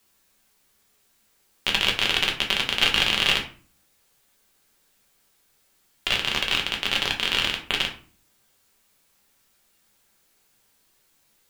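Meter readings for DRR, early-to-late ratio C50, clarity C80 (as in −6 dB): 0.5 dB, 10.0 dB, 14.5 dB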